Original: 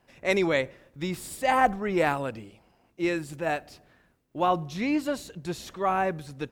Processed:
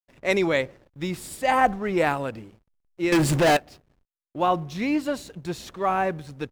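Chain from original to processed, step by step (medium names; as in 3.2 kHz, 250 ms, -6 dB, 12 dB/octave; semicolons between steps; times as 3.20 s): hysteresis with a dead band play -48 dBFS; 3.12–3.57 s: waveshaping leveller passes 5; trim +2 dB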